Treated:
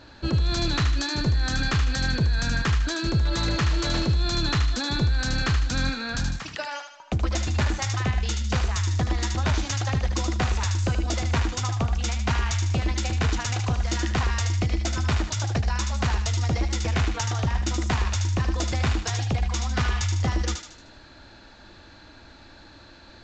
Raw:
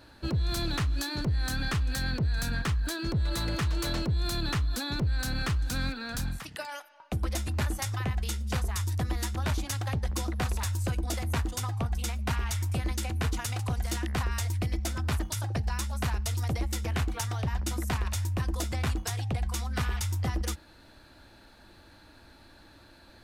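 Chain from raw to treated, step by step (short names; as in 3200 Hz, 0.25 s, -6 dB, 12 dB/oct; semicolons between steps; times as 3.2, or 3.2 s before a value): thinning echo 76 ms, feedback 48%, high-pass 1200 Hz, level -4.5 dB; gain +5.5 dB; A-law 128 kbps 16000 Hz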